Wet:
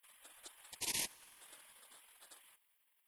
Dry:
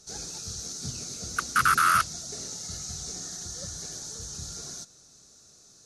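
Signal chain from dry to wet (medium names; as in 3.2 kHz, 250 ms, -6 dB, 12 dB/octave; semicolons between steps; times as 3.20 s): bit crusher 11-bit; spectral gate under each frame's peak -25 dB weak; tempo 1.9×; on a send: reverberation RT60 2.5 s, pre-delay 38 ms, DRR 23.5 dB; on the sum: trim -3 dB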